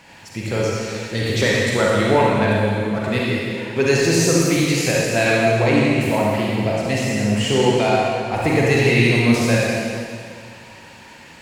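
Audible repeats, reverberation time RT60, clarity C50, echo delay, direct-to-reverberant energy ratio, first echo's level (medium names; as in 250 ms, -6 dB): no echo, 2.2 s, -3.5 dB, no echo, -5.5 dB, no echo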